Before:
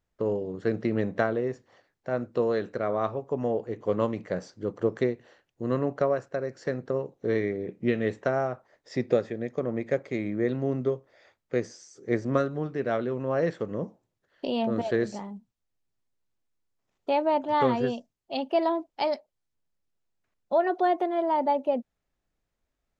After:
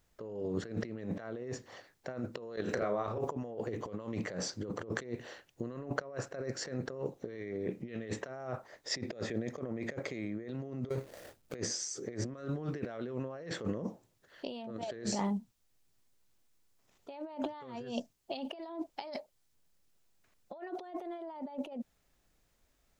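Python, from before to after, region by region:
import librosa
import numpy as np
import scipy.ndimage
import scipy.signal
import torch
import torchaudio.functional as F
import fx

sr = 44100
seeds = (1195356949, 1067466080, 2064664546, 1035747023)

y = fx.chain(x, sr, fx.over_compress(threshold_db=-34.0, ratio=-0.5),
    fx.doubler(ms=34.0, db=-7), at=(2.56, 3.31))
y = fx.chain(y, sr, fx.median_filter(points=41),
    fx.high_shelf(hz=3900.0, db=8.5),
    fx.over_compress(threshold_db=-36.0, ratio=-1.0), at=(10.89, 11.55))
y = fx.high_shelf(y, sr, hz=3600.0, db=7.0)
y = fx.over_compress(y, sr, threshold_db=-38.0, ratio=-1.0)
y = y * 10.0 ** (-2.0 / 20.0)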